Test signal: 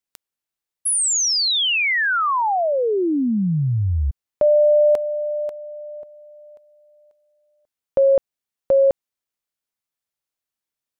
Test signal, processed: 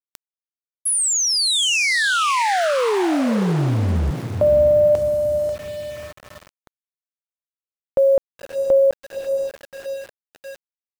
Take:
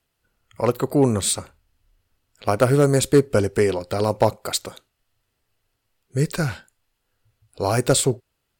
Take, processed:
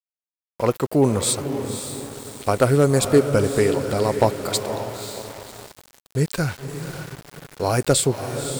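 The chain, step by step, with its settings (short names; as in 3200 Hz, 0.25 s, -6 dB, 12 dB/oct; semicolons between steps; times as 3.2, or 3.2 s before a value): diffused feedback echo 0.546 s, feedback 46%, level -8 dB; sample gate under -34 dBFS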